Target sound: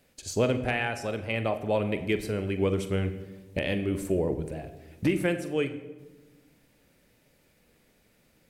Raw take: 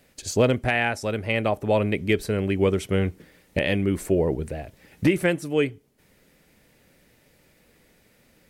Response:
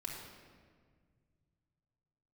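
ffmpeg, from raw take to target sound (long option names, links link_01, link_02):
-filter_complex "[0:a]equalizer=frequency=1900:width=7.7:gain=-3.5,asplit=2[link_01][link_02];[1:a]atrim=start_sample=2205,asetrate=79380,aresample=44100,adelay=43[link_03];[link_02][link_03]afir=irnorm=-1:irlink=0,volume=-4dB[link_04];[link_01][link_04]amix=inputs=2:normalize=0,volume=-5.5dB"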